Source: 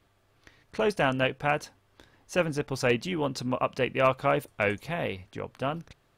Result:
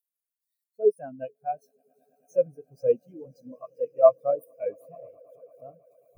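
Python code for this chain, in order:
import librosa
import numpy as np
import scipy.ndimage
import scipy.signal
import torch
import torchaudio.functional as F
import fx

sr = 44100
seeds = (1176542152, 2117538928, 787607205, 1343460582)

p1 = x + 0.5 * 10.0 ** (-19.5 / 20.0) * np.diff(np.sign(x), prepend=np.sign(x[:1]))
p2 = fx.high_shelf(p1, sr, hz=5100.0, db=5.0)
p3 = fx.quant_float(p2, sr, bits=2)
p4 = p2 + (p3 * 10.0 ** (-8.0 / 20.0))
p5 = fx.echo_swell(p4, sr, ms=110, loudest=8, wet_db=-12.5)
y = fx.spectral_expand(p5, sr, expansion=4.0)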